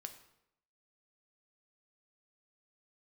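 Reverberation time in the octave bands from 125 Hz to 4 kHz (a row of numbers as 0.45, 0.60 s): 0.80, 0.80, 0.85, 0.75, 0.70, 0.65 s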